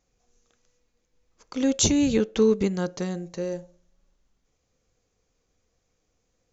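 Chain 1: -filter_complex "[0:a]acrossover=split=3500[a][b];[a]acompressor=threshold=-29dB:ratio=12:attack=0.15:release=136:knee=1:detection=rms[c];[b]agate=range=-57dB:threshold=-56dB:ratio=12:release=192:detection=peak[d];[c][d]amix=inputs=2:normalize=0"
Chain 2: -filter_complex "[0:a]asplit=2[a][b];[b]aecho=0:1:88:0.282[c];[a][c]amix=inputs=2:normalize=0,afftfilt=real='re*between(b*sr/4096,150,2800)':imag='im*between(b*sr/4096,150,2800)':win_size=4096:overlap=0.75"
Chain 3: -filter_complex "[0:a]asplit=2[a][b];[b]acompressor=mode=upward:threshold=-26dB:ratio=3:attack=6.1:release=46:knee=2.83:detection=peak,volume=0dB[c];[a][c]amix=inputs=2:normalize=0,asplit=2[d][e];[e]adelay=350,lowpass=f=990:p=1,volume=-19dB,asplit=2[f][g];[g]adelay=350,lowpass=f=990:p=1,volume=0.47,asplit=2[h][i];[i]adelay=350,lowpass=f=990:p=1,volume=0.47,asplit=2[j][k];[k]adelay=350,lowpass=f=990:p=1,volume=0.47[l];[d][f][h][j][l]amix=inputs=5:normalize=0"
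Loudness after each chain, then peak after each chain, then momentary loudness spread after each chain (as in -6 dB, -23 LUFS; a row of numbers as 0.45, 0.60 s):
-31.5, -25.0, -18.5 LUFS; -9.5, -10.5, -1.5 dBFS; 14, 11, 14 LU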